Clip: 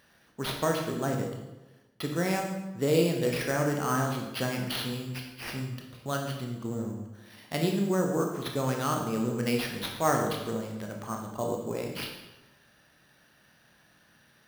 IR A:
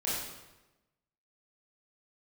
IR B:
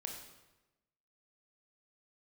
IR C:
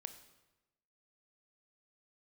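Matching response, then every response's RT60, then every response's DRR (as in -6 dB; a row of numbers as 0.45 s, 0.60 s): B; 1.1 s, 1.1 s, 1.0 s; -8.5 dB, 1.5 dB, 9.0 dB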